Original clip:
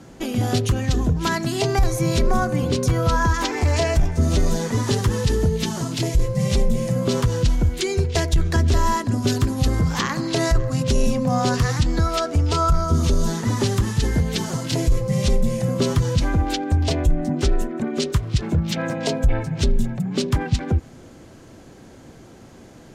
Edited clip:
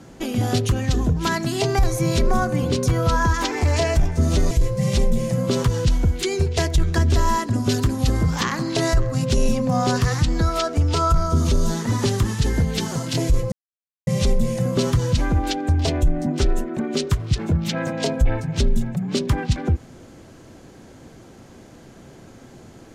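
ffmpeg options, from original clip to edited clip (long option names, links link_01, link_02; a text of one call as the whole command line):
ffmpeg -i in.wav -filter_complex "[0:a]asplit=3[link_01][link_02][link_03];[link_01]atrim=end=4.512[link_04];[link_02]atrim=start=6.088:end=15.1,asetpts=PTS-STARTPTS,afade=type=out:start_time=9.008:duration=0.004:curve=hsin,apad=pad_dur=0.55[link_05];[link_03]atrim=start=15.1,asetpts=PTS-STARTPTS,afade=type=in:duration=0.004:curve=hsin[link_06];[link_05][link_06]concat=n=2:v=0:a=1[link_07];[link_04][link_07]acrossfade=duration=0.004:curve1=hsin:curve2=hsin" out.wav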